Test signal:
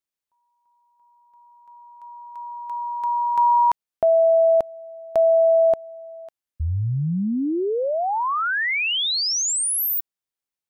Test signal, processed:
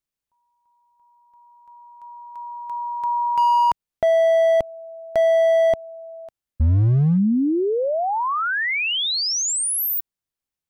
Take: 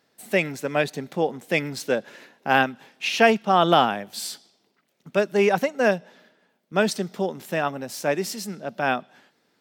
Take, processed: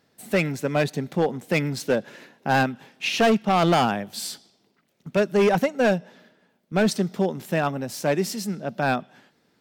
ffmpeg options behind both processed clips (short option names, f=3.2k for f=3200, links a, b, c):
-af "lowshelf=f=190:g=11.5,volume=14dB,asoftclip=hard,volume=-14dB"